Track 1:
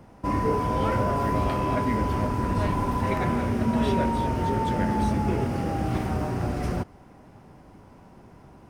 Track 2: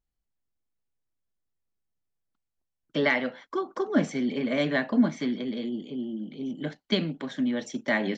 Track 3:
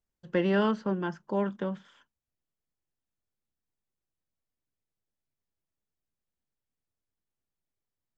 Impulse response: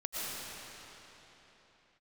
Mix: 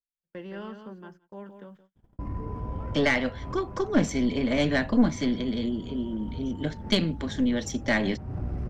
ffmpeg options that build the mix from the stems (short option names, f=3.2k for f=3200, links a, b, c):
-filter_complex "[0:a]alimiter=limit=-23.5dB:level=0:latency=1:release=13,aemphasis=mode=reproduction:type=riaa,adelay=1950,volume=-10.5dB,asplit=2[a][b];[b]volume=-7dB[c];[1:a]bass=f=250:g=4,treble=f=4k:g=8,volume=2.5dB,asplit=2[d][e];[2:a]highpass=f=93:w=0.5412,highpass=f=93:w=1.3066,volume=-11.5dB,asplit=2[f][g];[g]volume=-8.5dB[h];[e]apad=whole_len=469482[i];[a][i]sidechaincompress=threshold=-40dB:ratio=8:attack=5.4:release=171[j];[c][h]amix=inputs=2:normalize=0,aecho=0:1:170:1[k];[j][d][f][k]amix=inputs=4:normalize=0,agate=range=-30dB:threshold=-47dB:ratio=16:detection=peak,aeval=exprs='(tanh(4.47*val(0)+0.5)-tanh(0.5))/4.47':c=same"